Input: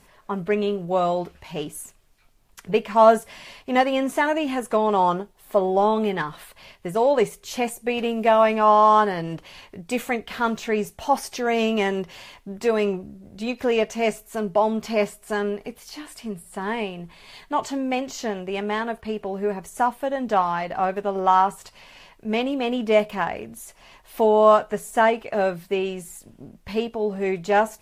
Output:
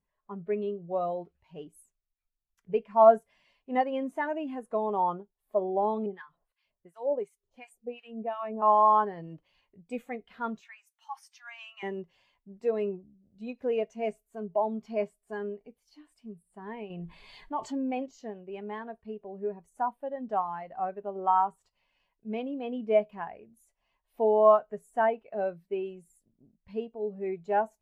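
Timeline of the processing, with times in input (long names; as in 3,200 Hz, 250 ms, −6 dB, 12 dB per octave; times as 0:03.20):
0:06.06–0:08.62: two-band tremolo in antiphase 2.8 Hz, depth 100%, crossover 1,000 Hz
0:10.61–0:11.83: inverse Chebyshev high-pass filter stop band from 500 Hz
0:16.90–0:18.06: envelope flattener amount 50%
whole clip: every bin expanded away from the loudest bin 1.5 to 1; level −4.5 dB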